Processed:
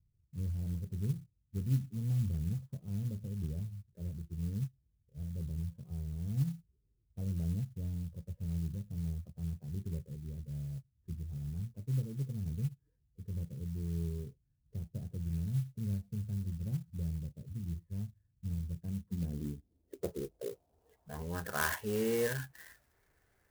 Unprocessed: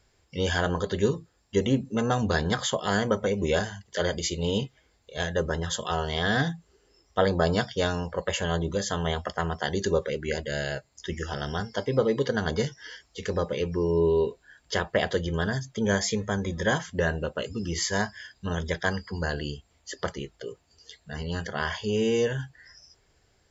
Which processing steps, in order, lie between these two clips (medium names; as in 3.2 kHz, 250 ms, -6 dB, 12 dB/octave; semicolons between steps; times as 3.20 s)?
low-pass sweep 130 Hz -> 1.9 kHz, 18.73–21.87 s; sampling jitter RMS 0.063 ms; trim -8 dB